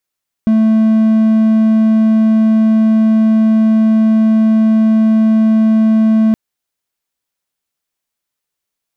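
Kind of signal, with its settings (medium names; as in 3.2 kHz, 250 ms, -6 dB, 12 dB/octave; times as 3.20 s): tone triangle 220 Hz -5 dBFS 5.87 s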